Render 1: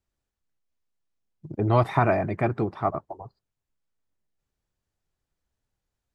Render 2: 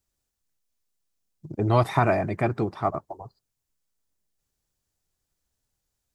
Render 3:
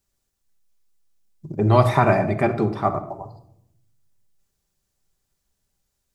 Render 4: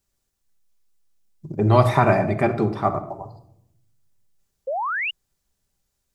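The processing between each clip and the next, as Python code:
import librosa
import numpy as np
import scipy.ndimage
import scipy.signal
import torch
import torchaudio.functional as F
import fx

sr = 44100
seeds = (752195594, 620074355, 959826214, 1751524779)

y1 = fx.bass_treble(x, sr, bass_db=0, treble_db=10)
y2 = fx.room_shoebox(y1, sr, seeds[0], volume_m3=1900.0, walls='furnished', distance_m=1.2)
y2 = y2 * librosa.db_to_amplitude(3.5)
y3 = fx.spec_paint(y2, sr, seeds[1], shape='rise', start_s=4.67, length_s=0.44, low_hz=500.0, high_hz=3000.0, level_db=-25.0)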